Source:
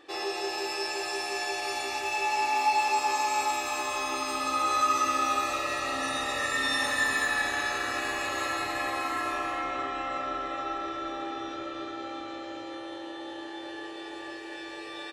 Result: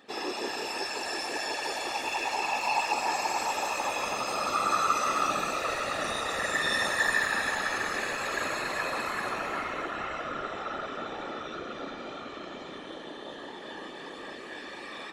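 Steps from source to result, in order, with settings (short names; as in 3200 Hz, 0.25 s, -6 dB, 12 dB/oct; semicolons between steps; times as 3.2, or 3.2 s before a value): echo with dull and thin repeats by turns 0.16 s, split 1900 Hz, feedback 56%, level -4 dB; whisperiser; gain -1.5 dB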